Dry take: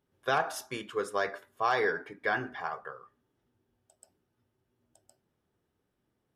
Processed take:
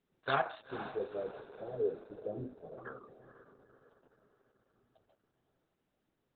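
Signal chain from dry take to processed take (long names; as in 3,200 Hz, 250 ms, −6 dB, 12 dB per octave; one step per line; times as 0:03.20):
0:00.61–0:02.78: elliptic low-pass filter 560 Hz, stop band 70 dB
flanger 0.68 Hz, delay 4.2 ms, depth 6.5 ms, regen −2%
feedback delay with all-pass diffusion 473 ms, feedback 48%, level −12 dB
level +1 dB
Opus 8 kbit/s 48,000 Hz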